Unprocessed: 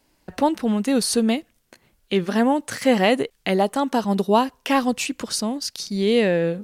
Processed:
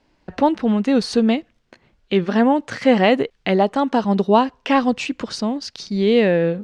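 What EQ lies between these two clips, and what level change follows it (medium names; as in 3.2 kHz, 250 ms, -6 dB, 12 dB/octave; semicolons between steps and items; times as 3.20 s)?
distance through air 150 m; +3.5 dB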